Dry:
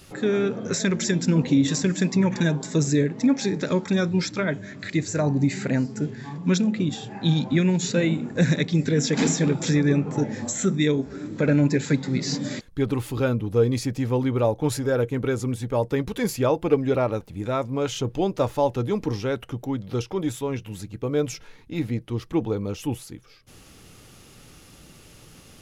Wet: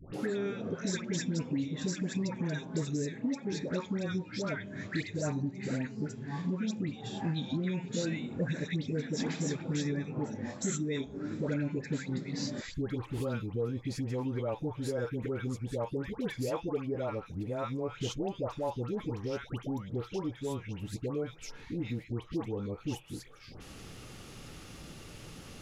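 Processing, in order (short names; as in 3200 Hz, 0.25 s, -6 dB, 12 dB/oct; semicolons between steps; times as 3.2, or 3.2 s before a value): high shelf 9200 Hz -10.5 dB; compressor 3:1, threshold -37 dBFS, peak gain reduction 17 dB; dispersion highs, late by 0.139 s, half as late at 1100 Hz; gain +1.5 dB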